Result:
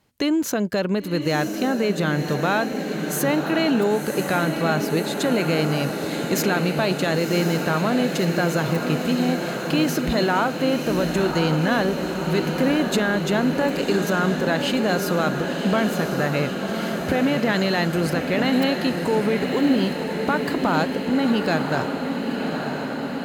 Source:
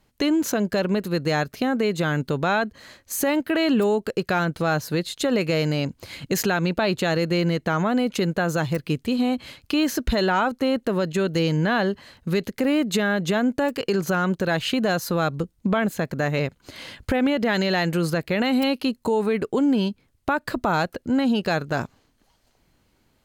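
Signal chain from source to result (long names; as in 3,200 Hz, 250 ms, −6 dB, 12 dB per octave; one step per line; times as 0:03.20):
high-pass filter 69 Hz
feedback delay with all-pass diffusion 1,056 ms, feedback 73%, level −6 dB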